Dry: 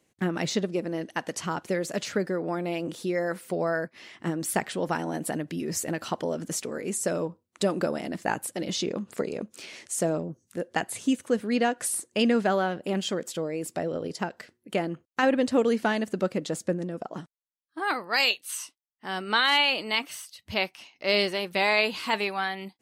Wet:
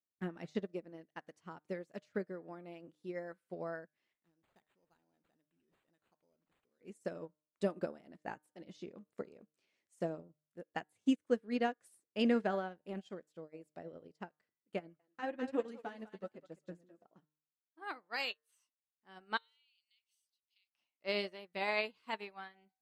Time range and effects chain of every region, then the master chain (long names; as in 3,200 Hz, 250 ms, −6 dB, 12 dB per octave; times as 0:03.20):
0:04.13–0:06.81: de-essing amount 75% + first-order pre-emphasis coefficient 0.8 + bad sample-rate conversion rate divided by 8×, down none, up hold
0:14.79–0:17.05: feedback echo with a high-pass in the loop 204 ms, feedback 27%, high-pass 590 Hz, level −5 dB + flanger 1.1 Hz, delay 5 ms, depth 5.4 ms, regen +31%
0:19.37–0:20.75: inverse Chebyshev high-pass filter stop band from 880 Hz, stop band 60 dB + downward compressor 20 to 1, threshold −31 dBFS
whole clip: high-shelf EQ 4,000 Hz −8.5 dB; hum removal 152 Hz, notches 15; expander for the loud parts 2.5 to 1, over −40 dBFS; level −4.5 dB